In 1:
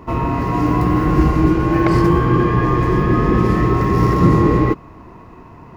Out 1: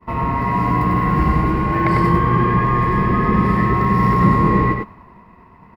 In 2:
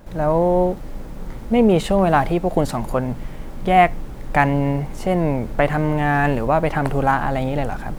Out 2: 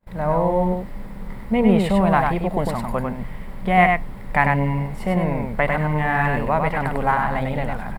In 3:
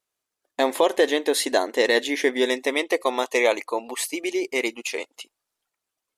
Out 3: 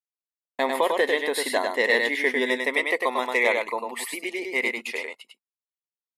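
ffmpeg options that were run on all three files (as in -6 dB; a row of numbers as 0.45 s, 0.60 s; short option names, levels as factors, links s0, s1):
-filter_complex "[0:a]agate=range=0.0224:threshold=0.02:ratio=3:detection=peak,equalizer=f=200:t=o:w=0.33:g=8,equalizer=f=315:t=o:w=0.33:g=-7,equalizer=f=1000:t=o:w=0.33:g=6,equalizer=f=2000:t=o:w=0.33:g=9,equalizer=f=6300:t=o:w=0.33:g=-11,asplit=2[s0][s1];[s1]aecho=0:1:99:0.631[s2];[s0][s2]amix=inputs=2:normalize=0,volume=0.596"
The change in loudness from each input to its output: -1.0 LU, -1.5 LU, -1.0 LU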